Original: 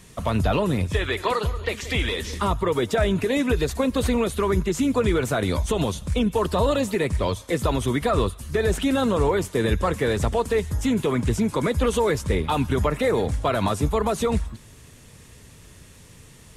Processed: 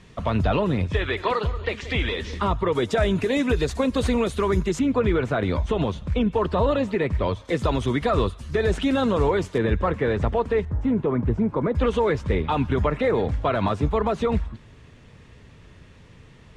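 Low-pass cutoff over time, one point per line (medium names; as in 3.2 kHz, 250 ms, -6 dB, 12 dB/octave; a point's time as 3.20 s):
3.8 kHz
from 2.75 s 7.1 kHz
from 4.79 s 2.8 kHz
from 7.45 s 5 kHz
from 9.58 s 2.4 kHz
from 10.65 s 1.2 kHz
from 11.75 s 3.1 kHz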